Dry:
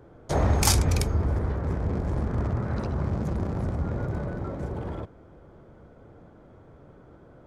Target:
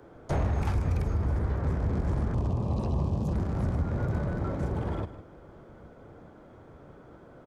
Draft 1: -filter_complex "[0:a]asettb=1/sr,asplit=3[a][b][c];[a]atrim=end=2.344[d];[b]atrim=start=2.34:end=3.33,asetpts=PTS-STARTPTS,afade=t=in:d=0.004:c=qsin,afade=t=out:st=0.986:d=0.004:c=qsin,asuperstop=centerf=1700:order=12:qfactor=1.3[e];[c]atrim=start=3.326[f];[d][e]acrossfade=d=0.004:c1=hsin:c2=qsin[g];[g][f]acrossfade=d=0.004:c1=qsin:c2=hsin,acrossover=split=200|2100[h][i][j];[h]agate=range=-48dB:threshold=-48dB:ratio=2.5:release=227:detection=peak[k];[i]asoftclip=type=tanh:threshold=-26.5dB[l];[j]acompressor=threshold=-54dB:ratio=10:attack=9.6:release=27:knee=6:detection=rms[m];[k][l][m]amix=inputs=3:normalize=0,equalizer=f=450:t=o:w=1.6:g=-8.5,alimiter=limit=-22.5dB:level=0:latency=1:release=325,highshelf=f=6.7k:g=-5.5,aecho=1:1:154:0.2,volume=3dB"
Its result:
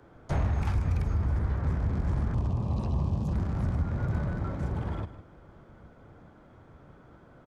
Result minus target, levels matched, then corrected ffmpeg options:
500 Hz band -5.0 dB; 8000 Hz band -2.0 dB
-filter_complex "[0:a]asettb=1/sr,asplit=3[a][b][c];[a]atrim=end=2.344[d];[b]atrim=start=2.34:end=3.33,asetpts=PTS-STARTPTS,afade=t=in:d=0.004:c=qsin,afade=t=out:st=0.986:d=0.004:c=qsin,asuperstop=centerf=1700:order=12:qfactor=1.3[e];[c]atrim=start=3.326[f];[d][e]acrossfade=d=0.004:c1=hsin:c2=qsin[g];[g][f]acrossfade=d=0.004:c1=qsin:c2=hsin,acrossover=split=200|2100[h][i][j];[h]agate=range=-48dB:threshold=-48dB:ratio=2.5:release=227:detection=peak[k];[i]asoftclip=type=tanh:threshold=-26.5dB[l];[j]acompressor=threshold=-54dB:ratio=10:attack=9.6:release=27:knee=6:detection=rms[m];[k][l][m]amix=inputs=3:normalize=0,equalizer=f=450:t=o:w=1.6:g=-2,alimiter=limit=-22.5dB:level=0:latency=1:release=325,aecho=1:1:154:0.2,volume=3dB"

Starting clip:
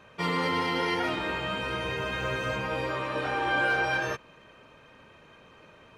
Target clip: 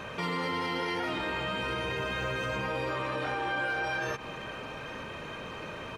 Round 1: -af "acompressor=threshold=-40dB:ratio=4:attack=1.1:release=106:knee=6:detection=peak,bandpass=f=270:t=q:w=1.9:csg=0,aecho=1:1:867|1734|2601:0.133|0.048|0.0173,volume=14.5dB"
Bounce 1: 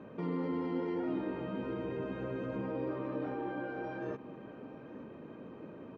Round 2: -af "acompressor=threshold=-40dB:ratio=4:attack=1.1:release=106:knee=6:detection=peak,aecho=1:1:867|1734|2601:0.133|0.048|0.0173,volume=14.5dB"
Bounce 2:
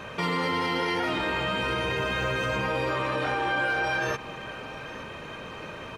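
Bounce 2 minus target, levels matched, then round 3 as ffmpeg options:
compressor: peak gain reduction -5 dB
-af "acompressor=threshold=-46.5dB:ratio=4:attack=1.1:release=106:knee=6:detection=peak,aecho=1:1:867|1734|2601:0.133|0.048|0.0173,volume=14.5dB"

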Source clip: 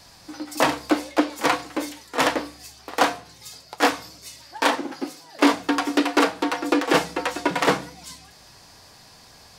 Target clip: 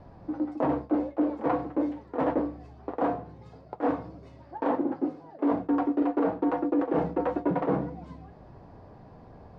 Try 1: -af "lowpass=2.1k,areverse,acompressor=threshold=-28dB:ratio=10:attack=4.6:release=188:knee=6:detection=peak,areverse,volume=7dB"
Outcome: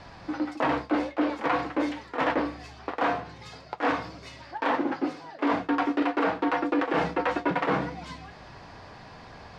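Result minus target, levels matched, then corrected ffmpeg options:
2000 Hz band +12.5 dB
-af "lowpass=610,areverse,acompressor=threshold=-28dB:ratio=10:attack=4.6:release=188:knee=6:detection=peak,areverse,volume=7dB"

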